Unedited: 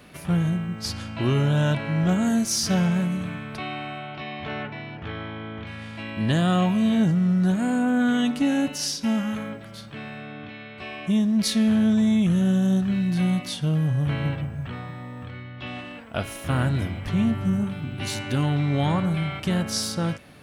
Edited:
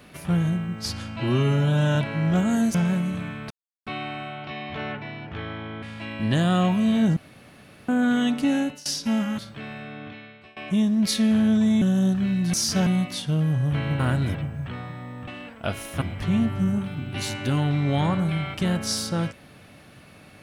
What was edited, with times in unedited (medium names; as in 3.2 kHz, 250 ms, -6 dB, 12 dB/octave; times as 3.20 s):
1.16–1.69 s: stretch 1.5×
2.48–2.81 s: move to 13.21 s
3.57 s: insert silence 0.36 s
5.53–5.80 s: delete
7.14–7.86 s: room tone
8.54–8.83 s: fade out, to -22 dB
9.36–9.75 s: delete
10.43–10.93 s: fade out, to -22.5 dB
12.18–12.49 s: delete
15.27–15.78 s: delete
16.52–16.87 s: move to 14.34 s